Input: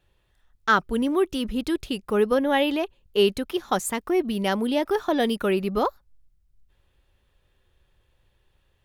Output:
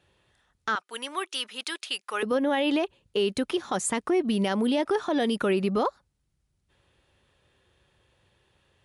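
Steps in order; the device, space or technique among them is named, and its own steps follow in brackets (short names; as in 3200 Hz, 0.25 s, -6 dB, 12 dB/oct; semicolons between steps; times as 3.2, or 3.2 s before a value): 0.75–2.23 HPF 1200 Hz 12 dB/oct; podcast mastering chain (HPF 100 Hz 12 dB/oct; compressor 2.5:1, threshold -25 dBFS, peak gain reduction 8 dB; limiter -21.5 dBFS, peak gain reduction 7.5 dB; gain +5 dB; MP3 112 kbps 24000 Hz)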